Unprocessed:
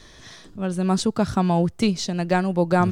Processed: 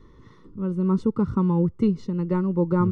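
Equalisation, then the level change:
Savitzky-Golay smoothing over 65 samples
Butterworth band-reject 690 Hz, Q 1.5
0.0 dB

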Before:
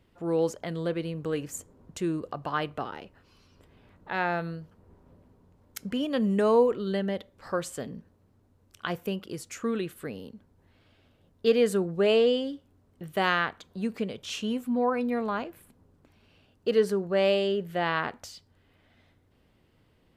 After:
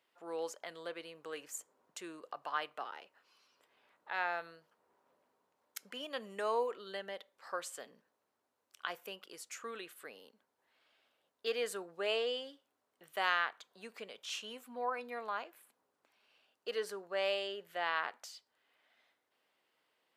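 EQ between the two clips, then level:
high-pass filter 730 Hz 12 dB per octave
−5.5 dB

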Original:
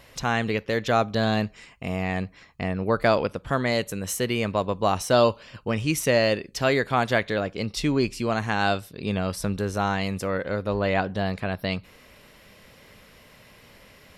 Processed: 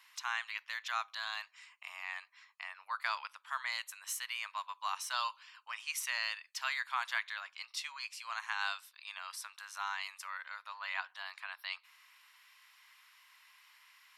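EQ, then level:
elliptic high-pass filter 980 Hz, stop band 60 dB
−8.0 dB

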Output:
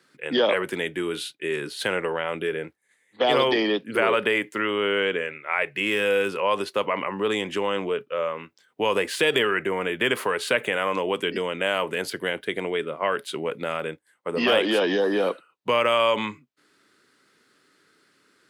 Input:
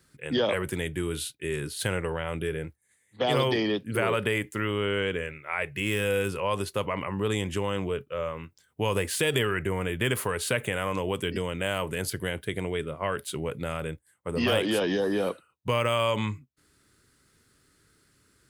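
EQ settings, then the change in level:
three-way crossover with the lows and the highs turned down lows −22 dB, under 170 Hz, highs −12 dB, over 5,000 Hz
low-shelf EQ 160 Hz −10.5 dB
+6.0 dB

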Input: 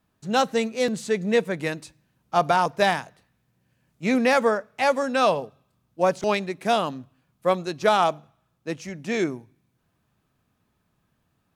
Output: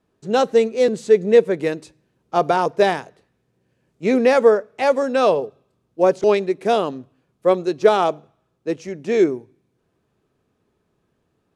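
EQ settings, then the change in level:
low-pass filter 10,000 Hz 12 dB per octave
parametric band 410 Hz +13 dB 0.89 octaves
−1.0 dB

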